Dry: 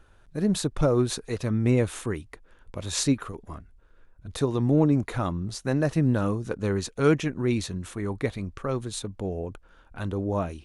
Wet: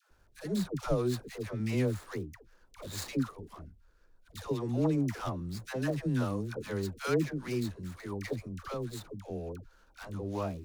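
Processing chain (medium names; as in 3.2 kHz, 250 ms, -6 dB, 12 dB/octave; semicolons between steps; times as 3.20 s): median filter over 15 samples; treble shelf 2.4 kHz +11.5 dB; phase dispersion lows, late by 109 ms, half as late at 590 Hz; trim -8 dB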